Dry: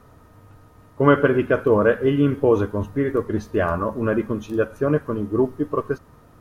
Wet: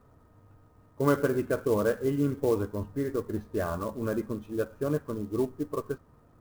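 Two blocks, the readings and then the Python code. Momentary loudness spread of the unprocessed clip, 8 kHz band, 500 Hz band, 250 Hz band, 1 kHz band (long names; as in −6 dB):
8 LU, can't be measured, −9.0 dB, −8.5 dB, −10.5 dB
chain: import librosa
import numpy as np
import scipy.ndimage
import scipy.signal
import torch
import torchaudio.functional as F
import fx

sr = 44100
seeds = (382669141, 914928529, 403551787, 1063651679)

y = fx.lowpass(x, sr, hz=1400.0, slope=6)
y = fx.clock_jitter(y, sr, seeds[0], jitter_ms=0.025)
y = y * librosa.db_to_amplitude(-8.5)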